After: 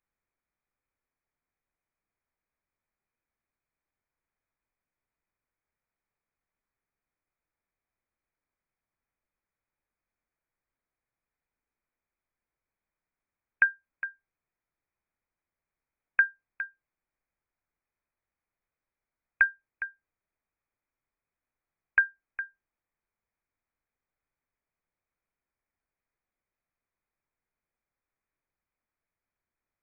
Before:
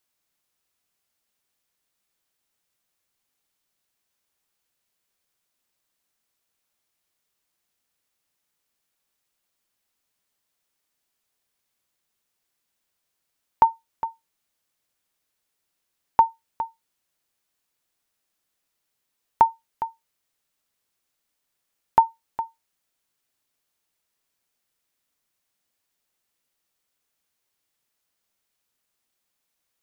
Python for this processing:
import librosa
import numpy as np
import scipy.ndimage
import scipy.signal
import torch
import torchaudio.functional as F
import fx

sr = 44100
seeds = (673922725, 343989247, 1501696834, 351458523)

y = fx.freq_invert(x, sr, carrier_hz=2500)
y = fx.low_shelf(y, sr, hz=76.0, db=10.5)
y = y * 10.0 ** (-6.0 / 20.0)